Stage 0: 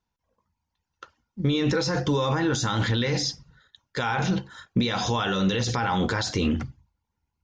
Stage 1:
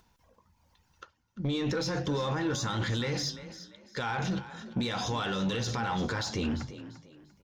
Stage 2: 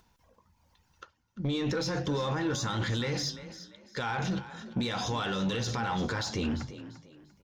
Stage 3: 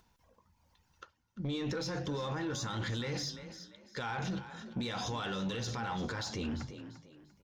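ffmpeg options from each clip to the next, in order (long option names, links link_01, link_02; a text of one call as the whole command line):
ffmpeg -i in.wav -filter_complex "[0:a]acompressor=mode=upward:threshold=-45dB:ratio=2.5,asoftclip=type=tanh:threshold=-18.5dB,asplit=4[link_01][link_02][link_03][link_04];[link_02]adelay=345,afreqshift=33,volume=-14dB[link_05];[link_03]adelay=690,afreqshift=66,volume=-24.5dB[link_06];[link_04]adelay=1035,afreqshift=99,volume=-34.9dB[link_07];[link_01][link_05][link_06][link_07]amix=inputs=4:normalize=0,volume=-5dB" out.wav
ffmpeg -i in.wav -af anull out.wav
ffmpeg -i in.wav -af "alimiter=level_in=3dB:limit=-24dB:level=0:latency=1,volume=-3dB,volume=-3dB" out.wav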